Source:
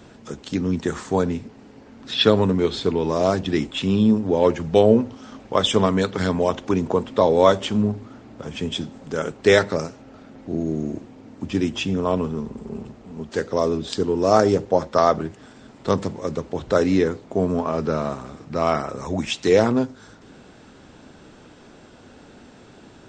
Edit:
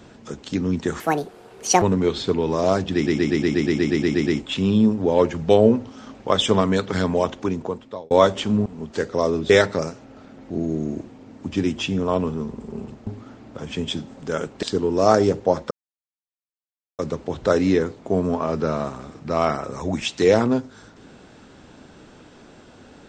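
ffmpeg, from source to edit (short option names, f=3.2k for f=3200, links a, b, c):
-filter_complex "[0:a]asplit=21[a][b][c][d][e][f][g][h][i][j][k][l][m][n][o][p][q][r][s][t][u];[a]atrim=end=1.004[v];[b]atrim=start=1:end=2.39,asetpts=PTS-STARTPTS,asetrate=74970,aresample=44100,atrim=end_sample=36058,asetpts=PTS-STARTPTS[w];[c]atrim=start=2.386:end=3.642[x];[d]atrim=start=3.518:end=3.642[y];[e]atrim=start=3.518:end=3.642[z];[f]atrim=start=3.518:end=3.642[aa];[g]atrim=start=3.518:end=3.642[ab];[h]atrim=start=3.518:end=3.642[ac];[i]atrim=start=3.518:end=3.642[ad];[j]atrim=start=3.518:end=3.642[ae];[k]atrim=start=3.518:end=3.642[af];[l]atrim=start=3.518:end=3.642[ag];[m]atrim=start=3.518:end=3.642[ah];[n]atrim=start=3.518:end=7.36,asetpts=PTS-STARTPTS,afade=t=out:st=2.952:d=0.89[ai];[o]atrim=start=7.36:end=7.912,asetpts=PTS-STARTPTS,afade=t=in:d=0.004:c=hsin[aj];[p]atrim=start=13.038:end=13.882[ak];[q]atrim=start=9.468:end=13.042[al];[r]atrim=start=7.908:end=9.472[am];[s]atrim=start=13.878:end=14.96,asetpts=PTS-STARTPTS,afade=t=out:st=1.078:d=0.004:c=hsin[an];[t]atrim=start=14.96:end=16.24,asetpts=PTS-STARTPTS,volume=0[ao];[u]atrim=start=16.24,asetpts=PTS-STARTPTS,afade=t=in:d=0.004:c=hsin[ap];[v][w]acrossfade=d=0.004:c1=hsin:c2=hsin[aq];[aq][x]acrossfade=d=0.004:c1=hsin:c2=hsin[ar];[ar][y]acrossfade=d=0.004:c1=hsin:c2=hsin[as];[as][z]acrossfade=d=0.004:c1=hsin:c2=hsin[at];[at][aa]acrossfade=d=0.004:c1=hsin:c2=hsin[au];[au][ab]acrossfade=d=0.004:c1=hsin:c2=hsin[av];[av][ac]acrossfade=d=0.004:c1=hsin:c2=hsin[aw];[aw][ad]acrossfade=d=0.004:c1=hsin:c2=hsin[ax];[ax][ae]acrossfade=d=0.004:c1=hsin:c2=hsin[ay];[ay][af]acrossfade=d=0.004:c1=hsin:c2=hsin[az];[az][ag]acrossfade=d=0.004:c1=hsin:c2=hsin[ba];[ba][ah]acrossfade=d=0.004:c1=hsin:c2=hsin[bb];[ai][aj]concat=n=2:v=0:a=1[bc];[bb][bc]acrossfade=d=0.004:c1=hsin:c2=hsin[bd];[bd][ak]acrossfade=d=0.004:c1=hsin:c2=hsin[be];[be][al]acrossfade=d=0.004:c1=hsin:c2=hsin[bf];[bf][am]acrossfade=d=0.004:c1=hsin:c2=hsin[bg];[an][ao][ap]concat=n=3:v=0:a=1[bh];[bg][bh]acrossfade=d=0.004:c1=hsin:c2=hsin"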